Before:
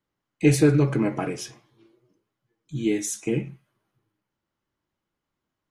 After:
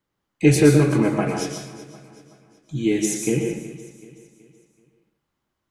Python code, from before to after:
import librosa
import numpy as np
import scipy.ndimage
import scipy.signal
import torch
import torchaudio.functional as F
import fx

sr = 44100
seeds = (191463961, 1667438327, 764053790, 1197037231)

y = fx.echo_feedback(x, sr, ms=376, feedback_pct=43, wet_db=-17.0)
y = fx.rev_plate(y, sr, seeds[0], rt60_s=0.59, hf_ratio=0.9, predelay_ms=105, drr_db=3.0)
y = y * librosa.db_to_amplitude(3.0)